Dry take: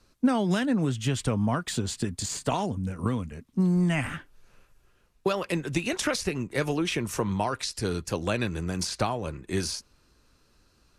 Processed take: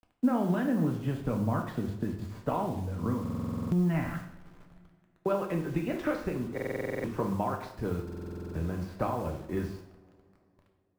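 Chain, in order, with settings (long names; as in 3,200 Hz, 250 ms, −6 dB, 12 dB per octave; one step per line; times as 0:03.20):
low-pass filter 1,400 Hz 12 dB per octave
in parallel at +1.5 dB: downward compressor 4 to 1, threshold −38 dBFS, peak gain reduction 17 dB
on the sum: bit reduction 8 bits
dead-zone distortion −54 dBFS
on a send at −2 dB: convolution reverb, pre-delay 3 ms
on the sum: buffer that repeats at 0:03.21/0:06.53/0:08.04, samples 2,048, times 10
one half of a high-frequency compander decoder only
level −6 dB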